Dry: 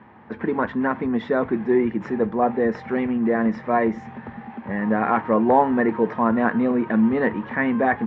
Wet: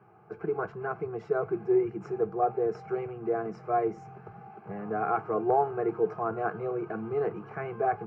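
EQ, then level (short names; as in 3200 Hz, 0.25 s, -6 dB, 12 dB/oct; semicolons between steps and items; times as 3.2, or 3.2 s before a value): HPF 73 Hz; fixed phaser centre 370 Hz, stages 8; fixed phaser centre 960 Hz, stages 6; 0.0 dB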